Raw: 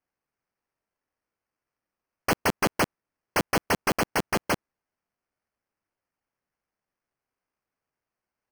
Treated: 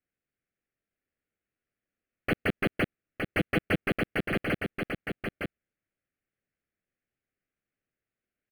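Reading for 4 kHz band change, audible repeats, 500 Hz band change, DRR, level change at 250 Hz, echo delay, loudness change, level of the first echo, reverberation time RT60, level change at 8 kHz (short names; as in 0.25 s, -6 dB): -6.0 dB, 1, -2.5 dB, none, +0.5 dB, 0.913 s, -4.0 dB, -5.0 dB, none, -20.0 dB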